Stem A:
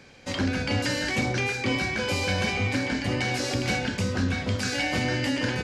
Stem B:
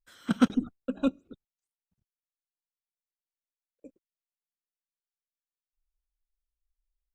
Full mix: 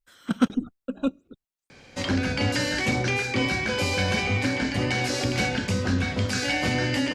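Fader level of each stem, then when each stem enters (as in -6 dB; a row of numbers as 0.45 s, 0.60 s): +1.5 dB, +1.0 dB; 1.70 s, 0.00 s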